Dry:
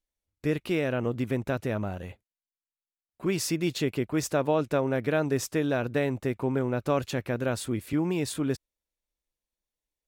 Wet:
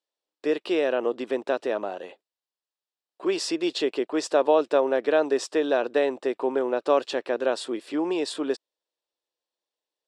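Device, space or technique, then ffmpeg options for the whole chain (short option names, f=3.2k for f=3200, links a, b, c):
phone speaker on a table: -af "highpass=f=350:w=0.5412,highpass=f=350:w=1.3066,equalizer=f=1.4k:t=q:w=4:g=-5,equalizer=f=2.2k:t=q:w=4:g=-10,equalizer=f=6.4k:t=q:w=4:g=-10,lowpass=f=7.2k:w=0.5412,lowpass=f=7.2k:w=1.3066,volume=6.5dB"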